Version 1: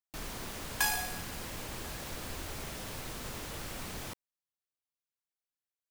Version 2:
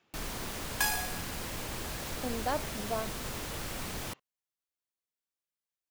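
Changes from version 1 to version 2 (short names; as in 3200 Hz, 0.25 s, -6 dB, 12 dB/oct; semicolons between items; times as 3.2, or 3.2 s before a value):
speech: unmuted; first sound +3.0 dB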